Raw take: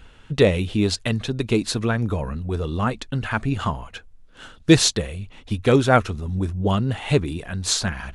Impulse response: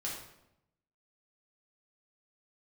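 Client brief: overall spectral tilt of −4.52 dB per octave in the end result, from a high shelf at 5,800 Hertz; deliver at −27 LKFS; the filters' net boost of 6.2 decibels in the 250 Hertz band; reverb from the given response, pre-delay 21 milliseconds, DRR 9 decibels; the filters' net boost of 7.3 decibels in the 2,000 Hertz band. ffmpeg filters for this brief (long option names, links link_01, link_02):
-filter_complex "[0:a]equalizer=frequency=250:width_type=o:gain=8,equalizer=frequency=2000:width_type=o:gain=8.5,highshelf=frequency=5800:gain=8.5,asplit=2[link_01][link_02];[1:a]atrim=start_sample=2205,adelay=21[link_03];[link_02][link_03]afir=irnorm=-1:irlink=0,volume=-10.5dB[link_04];[link_01][link_04]amix=inputs=2:normalize=0,volume=-10dB"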